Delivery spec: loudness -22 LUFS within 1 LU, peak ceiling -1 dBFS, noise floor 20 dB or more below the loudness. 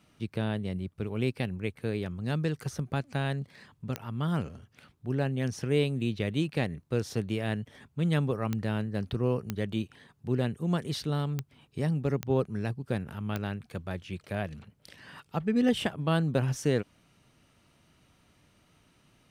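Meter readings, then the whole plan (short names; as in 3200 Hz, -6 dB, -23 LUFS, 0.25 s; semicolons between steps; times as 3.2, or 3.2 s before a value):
clicks 6; loudness -31.5 LUFS; peak -14.0 dBFS; loudness target -22.0 LUFS
-> de-click; gain +9.5 dB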